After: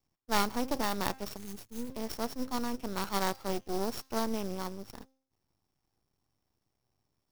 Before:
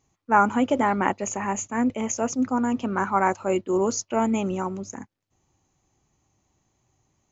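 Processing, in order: sorted samples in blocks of 8 samples; de-hum 264.5 Hz, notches 27; spectral selection erased 1.36–1.90 s, 250–6100 Hz; half-wave rectifier; sampling jitter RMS 0.024 ms; trim -7 dB

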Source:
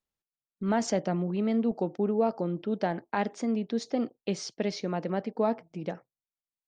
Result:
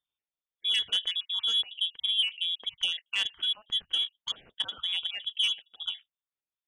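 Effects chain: random holes in the spectrogram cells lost 25%; frequency inversion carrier 3.6 kHz; transformer saturation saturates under 2.5 kHz

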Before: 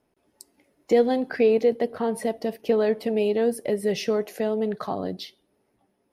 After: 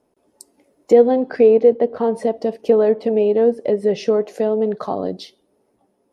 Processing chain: graphic EQ 250/500/1000/2000/8000 Hz +4/+7/+4/-3/+6 dB; low-pass that closes with the level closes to 2.7 kHz, closed at -13 dBFS

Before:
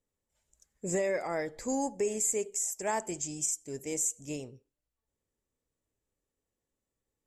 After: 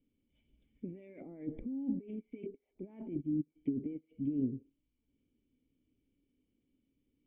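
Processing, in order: compressor with a negative ratio -42 dBFS, ratio -1; low-pass that closes with the level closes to 460 Hz, closed at -35.5 dBFS; cascade formant filter i; trim +11 dB

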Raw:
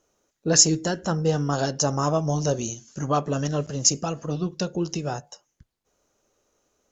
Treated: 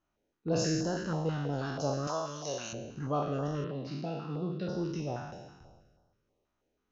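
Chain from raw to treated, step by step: spectral sustain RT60 1.40 s; 2.07–2.73 s: tilt EQ +4.5 dB/octave; 3.64–4.69 s: Chebyshev band-pass 140–4100 Hz, order 4; distance through air 260 m; step-sequenced notch 6.2 Hz 470–2300 Hz; trim -8.5 dB

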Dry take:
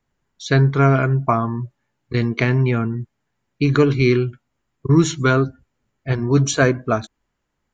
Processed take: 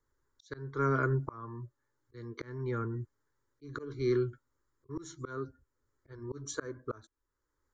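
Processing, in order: slow attack 736 ms; static phaser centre 710 Hz, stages 6; trim -3.5 dB

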